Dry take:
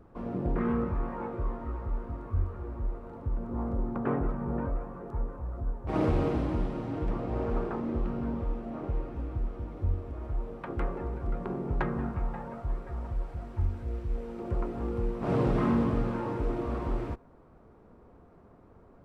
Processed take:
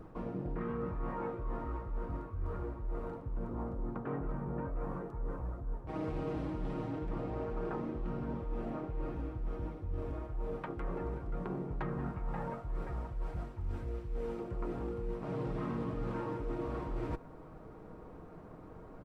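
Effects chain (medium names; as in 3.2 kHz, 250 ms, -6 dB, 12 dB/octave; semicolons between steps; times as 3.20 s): comb 6.4 ms, depth 39%; reverse; compression 10:1, threshold -39 dBFS, peak gain reduction 17.5 dB; reverse; trim +5 dB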